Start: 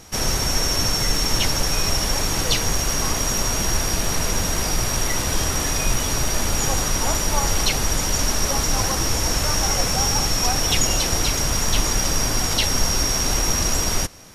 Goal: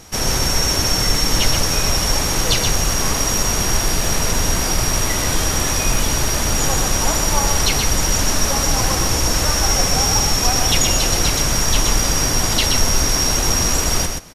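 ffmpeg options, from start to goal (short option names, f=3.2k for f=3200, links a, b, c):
-af "aecho=1:1:126:0.562,volume=2.5dB"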